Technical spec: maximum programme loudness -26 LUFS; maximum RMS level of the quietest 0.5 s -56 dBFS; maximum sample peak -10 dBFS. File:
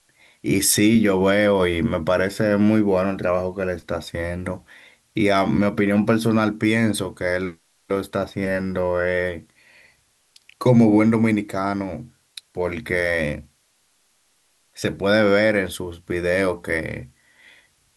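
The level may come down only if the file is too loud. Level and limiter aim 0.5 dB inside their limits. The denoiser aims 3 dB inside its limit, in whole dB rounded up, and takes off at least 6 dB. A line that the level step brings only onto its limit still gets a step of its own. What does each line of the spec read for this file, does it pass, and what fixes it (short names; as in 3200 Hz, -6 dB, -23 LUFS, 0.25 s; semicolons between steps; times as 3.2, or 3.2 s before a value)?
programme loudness -20.5 LUFS: fail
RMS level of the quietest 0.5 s -64 dBFS: OK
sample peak -3.5 dBFS: fail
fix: gain -6 dB; limiter -10.5 dBFS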